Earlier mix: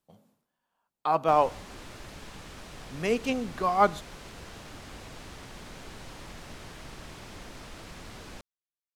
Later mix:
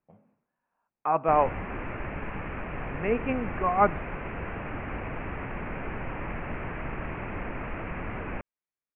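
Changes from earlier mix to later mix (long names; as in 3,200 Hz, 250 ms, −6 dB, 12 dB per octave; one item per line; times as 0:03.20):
background +10.5 dB
master: add Butterworth low-pass 2,600 Hz 72 dB per octave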